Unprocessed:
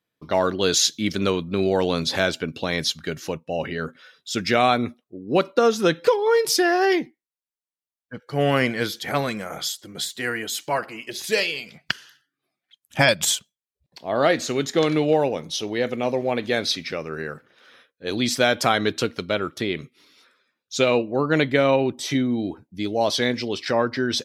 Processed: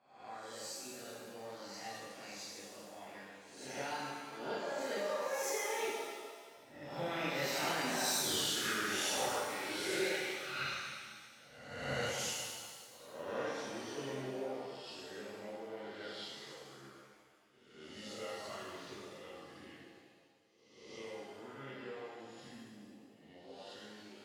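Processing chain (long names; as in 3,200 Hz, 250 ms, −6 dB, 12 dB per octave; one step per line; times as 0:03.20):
peak hold with a rise ahead of every peak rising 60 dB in 0.86 s
source passing by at 0:08.27, 55 m/s, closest 5.8 metres
reverb reduction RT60 0.84 s
downward compressor 12 to 1, threshold −43 dBFS, peak gain reduction 16.5 dB
reverb with rising layers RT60 1.7 s, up +7 semitones, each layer −8 dB, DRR −7 dB
level +4 dB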